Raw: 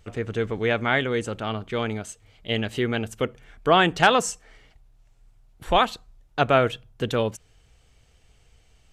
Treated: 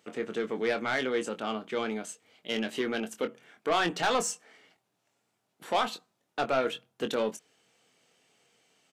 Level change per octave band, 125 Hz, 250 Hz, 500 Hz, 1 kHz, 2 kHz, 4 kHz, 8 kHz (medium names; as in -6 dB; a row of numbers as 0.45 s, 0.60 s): -17.5 dB, -6.5 dB, -6.0 dB, -8.0 dB, -8.0 dB, -7.0 dB, -3.0 dB